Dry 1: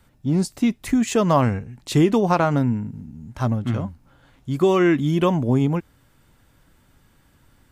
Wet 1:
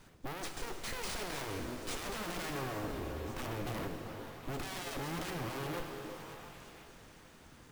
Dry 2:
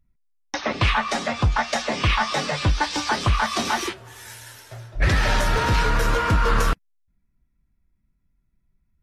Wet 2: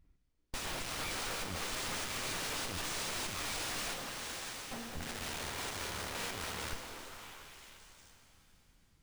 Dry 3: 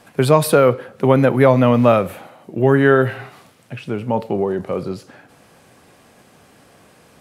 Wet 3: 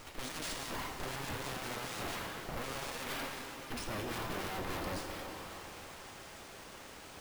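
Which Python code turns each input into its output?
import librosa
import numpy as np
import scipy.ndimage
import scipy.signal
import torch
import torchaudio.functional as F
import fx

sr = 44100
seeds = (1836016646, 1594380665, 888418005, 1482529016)

y = np.abs(x)
y = fx.tube_stage(y, sr, drive_db=29.0, bias=0.25)
y = fx.echo_stepped(y, sr, ms=347, hz=400.0, octaves=1.4, feedback_pct=70, wet_db=-5.5)
y = np.repeat(y[::3], 3)[:len(y)]
y = fx.rev_shimmer(y, sr, seeds[0], rt60_s=3.3, semitones=7, shimmer_db=-8, drr_db=4.5)
y = F.gain(torch.from_numpy(y), 2.5).numpy()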